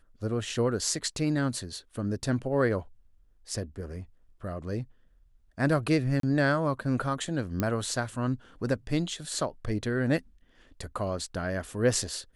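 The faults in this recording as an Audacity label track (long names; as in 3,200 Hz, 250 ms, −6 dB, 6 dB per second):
6.200000	6.230000	drop-out 33 ms
7.600000	7.600000	click −14 dBFS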